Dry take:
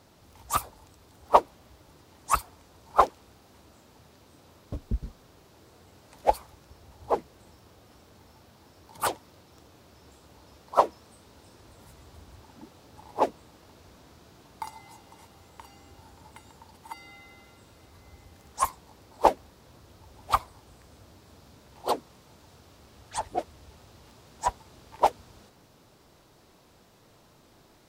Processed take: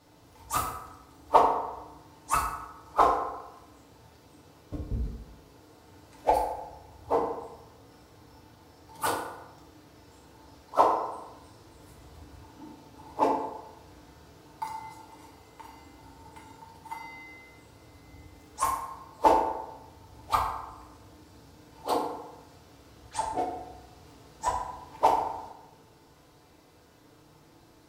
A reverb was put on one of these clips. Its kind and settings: FDN reverb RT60 0.99 s, low-frequency decay 0.85×, high-frequency decay 0.55×, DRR -4.5 dB; gain -5.5 dB

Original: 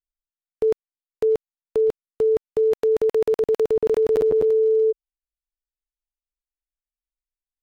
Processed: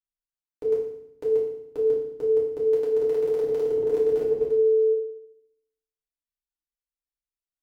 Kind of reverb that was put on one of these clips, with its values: FDN reverb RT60 0.74 s, low-frequency decay 1.5×, high-frequency decay 1×, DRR -6 dB; gain -13.5 dB

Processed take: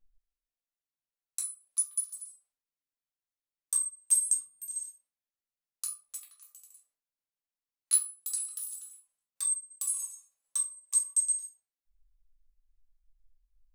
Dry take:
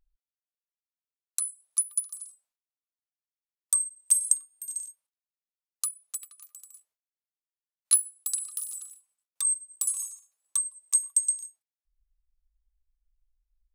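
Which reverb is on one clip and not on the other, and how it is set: shoebox room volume 190 m³, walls furnished, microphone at 2.2 m; gain -7.5 dB

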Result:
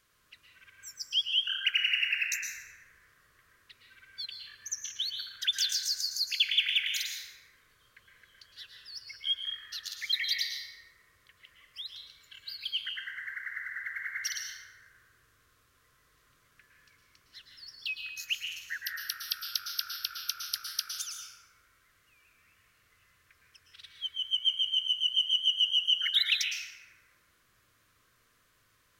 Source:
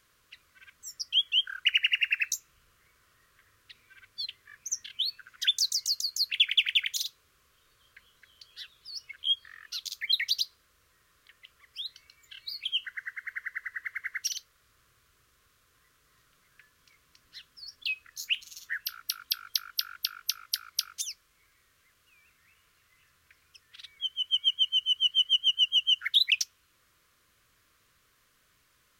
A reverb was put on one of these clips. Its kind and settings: plate-style reverb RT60 2.2 s, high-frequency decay 0.3×, pre-delay 0.1 s, DRR -0.5 dB; gain -3.5 dB

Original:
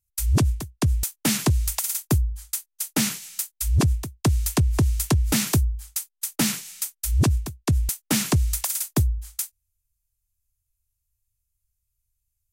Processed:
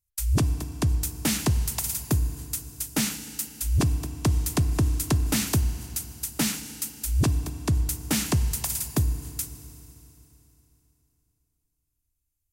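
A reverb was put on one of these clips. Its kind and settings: FDN reverb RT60 3.3 s, high-frequency decay 0.95×, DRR 11.5 dB; gain -3 dB

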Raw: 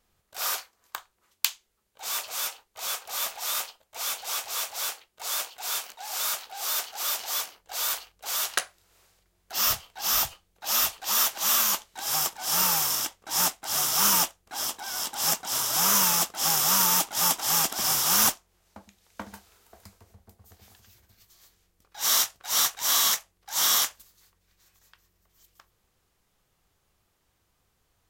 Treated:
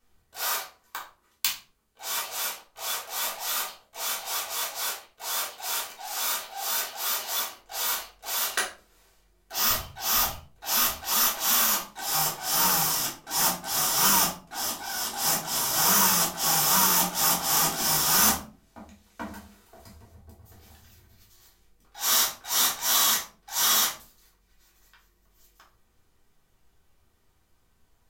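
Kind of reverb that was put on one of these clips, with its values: shoebox room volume 240 m³, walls furnished, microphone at 3.5 m; gain -5 dB

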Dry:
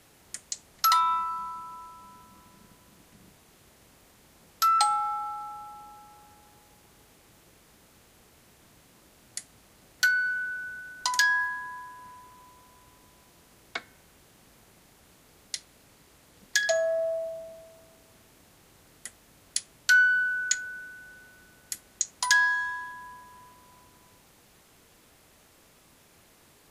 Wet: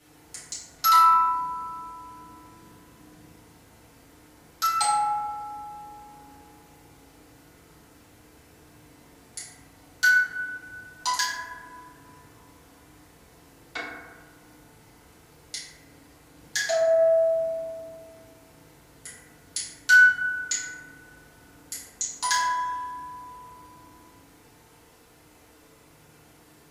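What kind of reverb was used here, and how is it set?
FDN reverb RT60 1.4 s, low-frequency decay 1×, high-frequency decay 0.35×, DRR -9 dB; gain -5.5 dB

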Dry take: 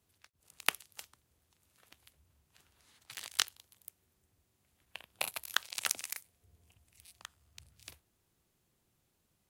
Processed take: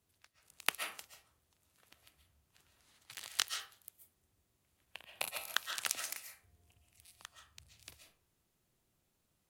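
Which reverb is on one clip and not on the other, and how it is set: digital reverb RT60 0.46 s, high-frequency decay 0.6×, pre-delay 95 ms, DRR 5 dB; gain -3 dB

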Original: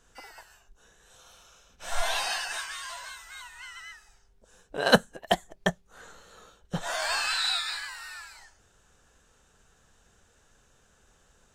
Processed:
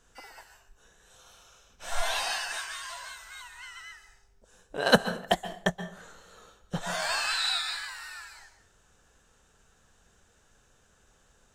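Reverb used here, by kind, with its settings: plate-style reverb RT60 0.54 s, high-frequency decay 0.75×, pre-delay 0.115 s, DRR 12 dB; gain -1 dB

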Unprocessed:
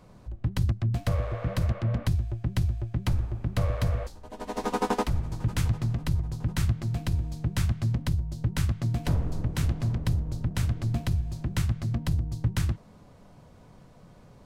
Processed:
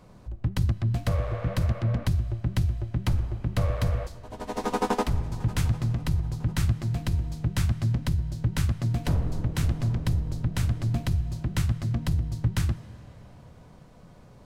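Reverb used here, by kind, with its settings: digital reverb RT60 4.3 s, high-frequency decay 0.75×, pre-delay 10 ms, DRR 17 dB; gain +1 dB

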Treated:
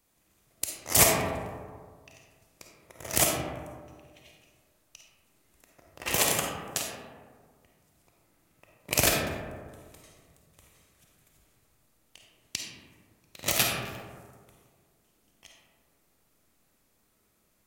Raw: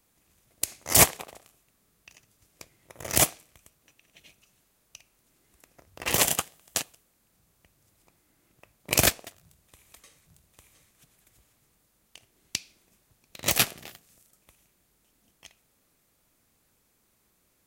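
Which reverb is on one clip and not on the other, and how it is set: digital reverb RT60 1.8 s, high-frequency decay 0.35×, pre-delay 10 ms, DRR -0.5 dB; gain -3.5 dB

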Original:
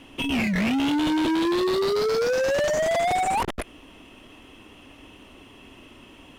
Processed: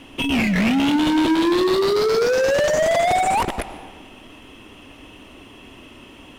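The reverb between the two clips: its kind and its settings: digital reverb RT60 1.5 s, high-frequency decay 0.85×, pre-delay 65 ms, DRR 12.5 dB; gain +4.5 dB

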